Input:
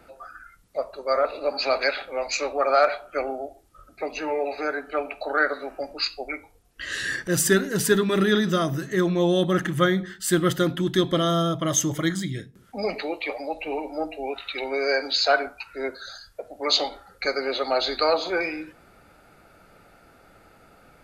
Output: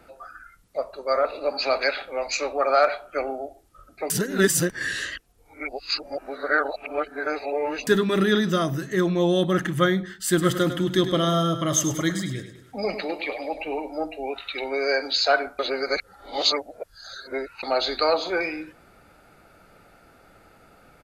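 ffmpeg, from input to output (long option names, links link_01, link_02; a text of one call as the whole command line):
ffmpeg -i in.wav -filter_complex "[0:a]asplit=3[link_01][link_02][link_03];[link_01]afade=type=out:start_time=10.37:duration=0.02[link_04];[link_02]aecho=1:1:102|204|306|408|510:0.299|0.137|0.0632|0.0291|0.0134,afade=type=in:start_time=10.37:duration=0.02,afade=type=out:start_time=13.62:duration=0.02[link_05];[link_03]afade=type=in:start_time=13.62:duration=0.02[link_06];[link_04][link_05][link_06]amix=inputs=3:normalize=0,asplit=5[link_07][link_08][link_09][link_10][link_11];[link_07]atrim=end=4.102[link_12];[link_08]atrim=start=4.098:end=7.872,asetpts=PTS-STARTPTS,areverse[link_13];[link_09]atrim=start=7.868:end=15.592[link_14];[link_10]atrim=start=15.588:end=17.632,asetpts=PTS-STARTPTS,areverse[link_15];[link_11]atrim=start=17.628[link_16];[link_12][link_13]acrossfade=duration=0.004:curve1=hsin:curve2=hsin[link_17];[link_17][link_14]acrossfade=duration=0.004:curve1=hsin:curve2=hsin[link_18];[link_18][link_15]acrossfade=duration=0.004:curve1=hsin:curve2=hsin[link_19];[link_19][link_16]acrossfade=duration=0.004:curve1=hsin:curve2=hsin" out.wav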